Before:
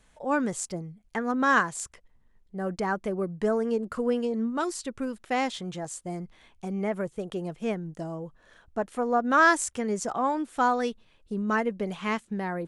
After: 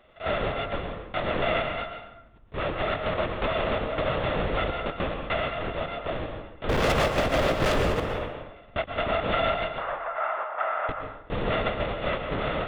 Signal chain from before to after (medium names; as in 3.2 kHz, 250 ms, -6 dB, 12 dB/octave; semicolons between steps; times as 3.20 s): sorted samples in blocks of 64 samples; LPC vocoder at 8 kHz whisper; 6.69–8.00 s: waveshaping leveller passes 5; 9.78–10.89 s: Butterworth band-pass 1.1 kHz, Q 1.2; compression 4:1, threshold -28 dBFS, peak gain reduction 11.5 dB; plate-style reverb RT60 0.87 s, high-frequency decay 0.65×, pre-delay 105 ms, DRR 4.5 dB; trim +3.5 dB